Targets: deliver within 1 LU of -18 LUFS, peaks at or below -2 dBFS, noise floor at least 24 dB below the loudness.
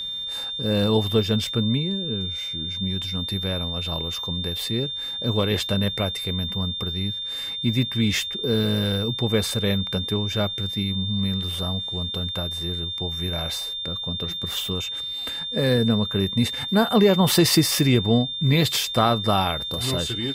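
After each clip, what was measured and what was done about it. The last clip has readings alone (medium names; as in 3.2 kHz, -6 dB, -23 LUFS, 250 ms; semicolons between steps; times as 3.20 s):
steady tone 3.6 kHz; tone level -28 dBFS; loudness -23.0 LUFS; peak level -5.0 dBFS; loudness target -18.0 LUFS
-> band-stop 3.6 kHz, Q 30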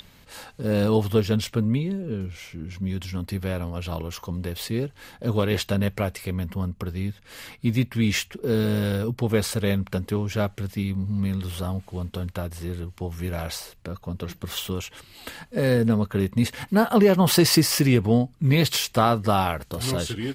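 steady tone not found; loudness -24.5 LUFS; peak level -5.5 dBFS; loudness target -18.0 LUFS
-> trim +6.5 dB; peak limiter -2 dBFS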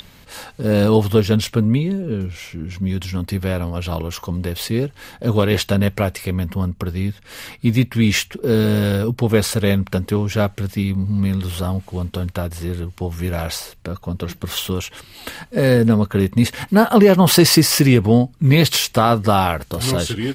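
loudness -18.5 LUFS; peak level -2.0 dBFS; noise floor -46 dBFS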